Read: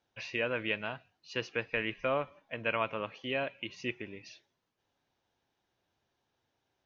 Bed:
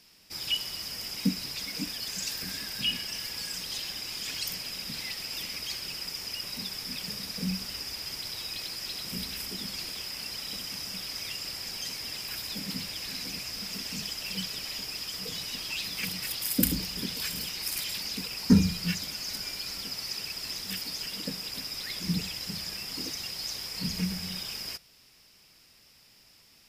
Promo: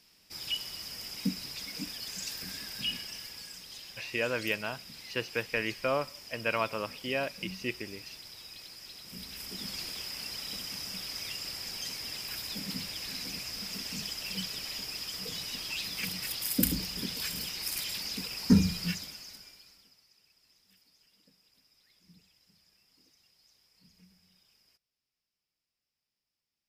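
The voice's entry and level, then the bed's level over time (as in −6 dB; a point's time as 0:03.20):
3.80 s, +1.5 dB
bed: 0:02.94 −4.5 dB
0:03.61 −11 dB
0:09.04 −11 dB
0:09.69 −2 dB
0:18.85 −2 dB
0:20.09 −30.5 dB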